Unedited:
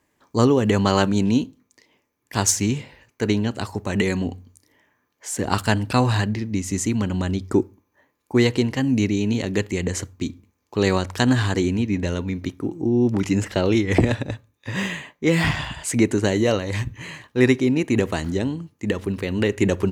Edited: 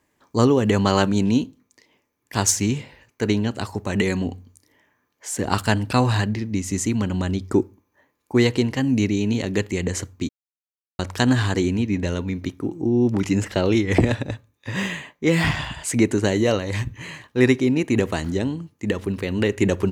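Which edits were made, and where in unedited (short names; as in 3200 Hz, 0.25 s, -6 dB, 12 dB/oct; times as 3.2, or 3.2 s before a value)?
10.29–10.99 mute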